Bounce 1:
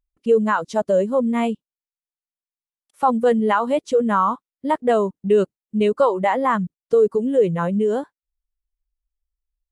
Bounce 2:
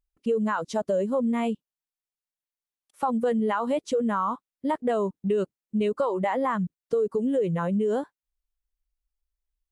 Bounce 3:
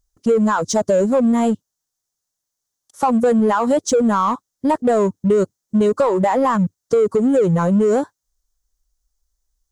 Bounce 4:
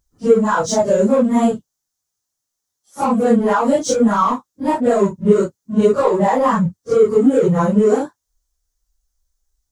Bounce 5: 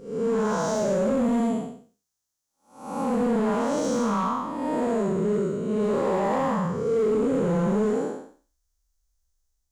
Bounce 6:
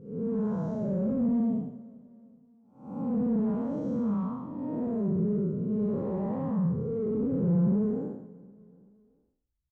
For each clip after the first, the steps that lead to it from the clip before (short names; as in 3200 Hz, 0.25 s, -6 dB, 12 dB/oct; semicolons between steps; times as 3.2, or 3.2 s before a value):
in parallel at +2 dB: limiter -16.5 dBFS, peak gain reduction 10 dB; on the sum: compressor, threshold -12 dBFS, peak gain reduction 5 dB; gain -9 dB
fifteen-band EQ 100 Hz +7 dB, 2500 Hz -12 dB, 6300 Hz +11 dB; in parallel at -6 dB: hard clip -29.5 dBFS, distortion -8 dB; on the sum: gain +7.5 dB
phase scrambler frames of 0.1 s; gain +1.5 dB
time blur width 0.322 s; in parallel at -1.5 dB: limiter -16.5 dBFS, peak gain reduction 7.5 dB; on the sum: hard clip -11 dBFS, distortion -19 dB; gain -7.5 dB
band-pass 120 Hz, Q 1.5; feedback echo 0.38 s, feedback 49%, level -22 dB; gain +5 dB